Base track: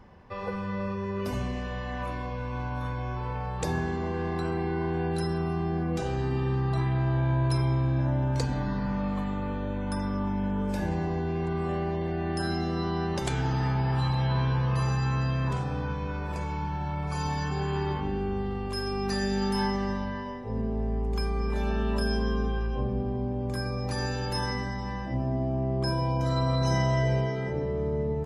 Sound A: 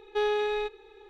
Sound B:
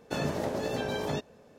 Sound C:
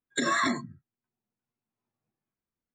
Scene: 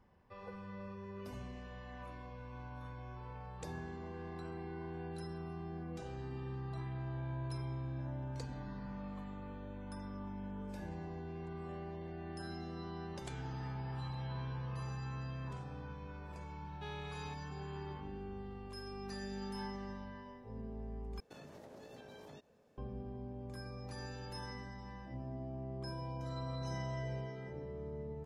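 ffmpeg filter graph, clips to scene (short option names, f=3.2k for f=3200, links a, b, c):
-filter_complex "[0:a]volume=-15.5dB[a];[1:a]highpass=f=1.4k:p=1[b];[2:a]acompressor=threshold=-37dB:ratio=6:attack=3.2:release=140:knee=1:detection=peak[c];[a]asplit=2[d][e];[d]atrim=end=21.204[f];[c]atrim=end=1.58,asetpts=PTS-STARTPTS,volume=-13dB[g];[e]atrim=start=22.776[h];[b]atrim=end=1.09,asetpts=PTS-STARTPTS,volume=-13.5dB,afade=t=in:d=0.004:c=hsin,afade=t=out:st=1.086:d=0.004:c=hsin,adelay=16660[i];[f][g]acrossfade=d=0.004:c1=hsin:c2=hsin[j];[j][h]acrossfade=d=0.004:c1=hsin:c2=hsin[k];[k][i]amix=inputs=2:normalize=0"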